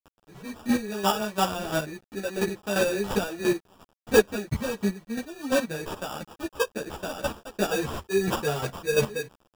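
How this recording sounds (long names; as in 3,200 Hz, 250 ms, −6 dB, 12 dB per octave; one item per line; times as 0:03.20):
a quantiser's noise floor 8 bits, dither none
chopped level 2.9 Hz, depth 65%, duty 20%
aliases and images of a low sample rate 2,100 Hz, jitter 0%
a shimmering, thickened sound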